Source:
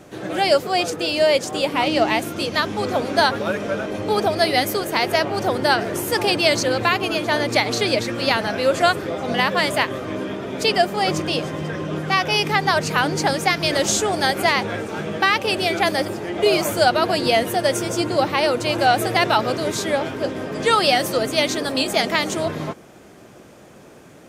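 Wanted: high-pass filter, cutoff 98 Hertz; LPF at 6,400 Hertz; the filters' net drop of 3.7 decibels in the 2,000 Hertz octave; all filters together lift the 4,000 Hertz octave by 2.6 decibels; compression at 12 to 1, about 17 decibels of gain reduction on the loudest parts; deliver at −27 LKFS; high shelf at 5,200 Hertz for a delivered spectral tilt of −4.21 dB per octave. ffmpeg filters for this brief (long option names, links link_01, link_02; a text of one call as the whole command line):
ffmpeg -i in.wav -af "highpass=98,lowpass=6400,equalizer=frequency=2000:width_type=o:gain=-6,equalizer=frequency=4000:width_type=o:gain=8,highshelf=frequency=5200:gain=-5.5,acompressor=threshold=-30dB:ratio=12,volume=6.5dB" out.wav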